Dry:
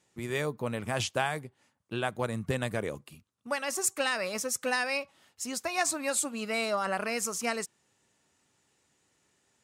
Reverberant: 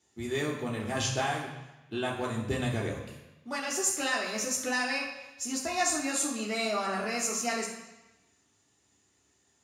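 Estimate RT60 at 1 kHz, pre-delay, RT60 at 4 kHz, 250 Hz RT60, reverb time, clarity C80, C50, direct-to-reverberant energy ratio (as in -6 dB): 1.1 s, 3 ms, 1.1 s, 1.0 s, 1.0 s, 6.5 dB, 4.5 dB, -4.0 dB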